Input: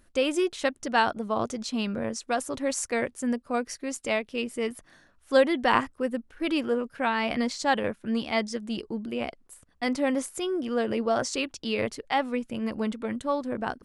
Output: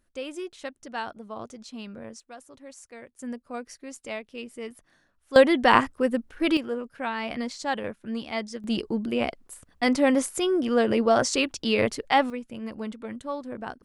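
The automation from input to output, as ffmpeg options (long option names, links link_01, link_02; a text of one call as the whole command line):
ffmpeg -i in.wav -af "asetnsamples=nb_out_samples=441:pad=0,asendcmd='2.2 volume volume -17dB;3.19 volume volume -7.5dB;5.36 volume volume 4.5dB;6.57 volume volume -4dB;8.64 volume volume 5dB;12.3 volume volume -5dB',volume=-10dB" out.wav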